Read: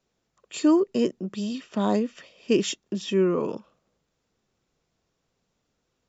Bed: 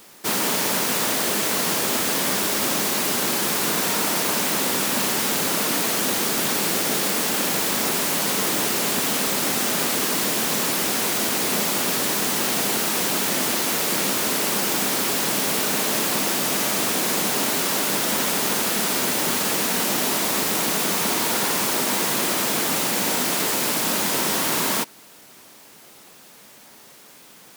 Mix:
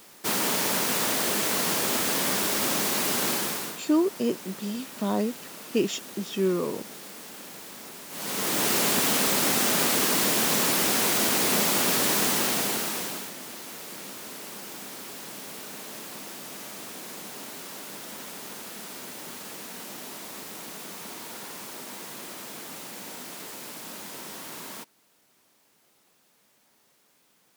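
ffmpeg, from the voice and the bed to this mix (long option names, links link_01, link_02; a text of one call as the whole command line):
ffmpeg -i stem1.wav -i stem2.wav -filter_complex "[0:a]adelay=3250,volume=-3dB[link_01];[1:a]volume=15.5dB,afade=type=out:start_time=3.3:duration=0.5:silence=0.149624,afade=type=in:start_time=8.09:duration=0.64:silence=0.112202,afade=type=out:start_time=12.23:duration=1.1:silence=0.149624[link_02];[link_01][link_02]amix=inputs=2:normalize=0" out.wav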